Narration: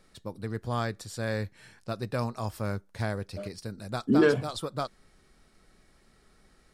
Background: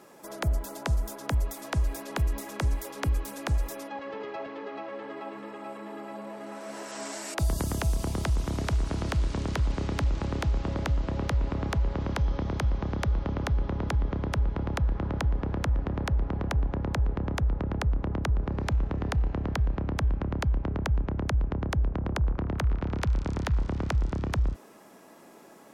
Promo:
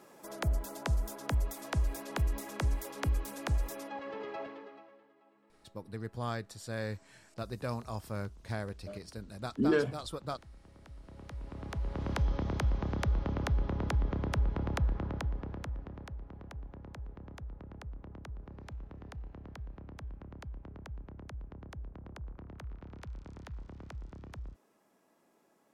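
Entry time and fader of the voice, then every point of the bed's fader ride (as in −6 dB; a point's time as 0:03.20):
5.50 s, −6.0 dB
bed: 0:04.44 −4 dB
0:05.13 −27.5 dB
0:10.75 −27.5 dB
0:12.14 −3.5 dB
0:14.83 −3.5 dB
0:16.22 −18 dB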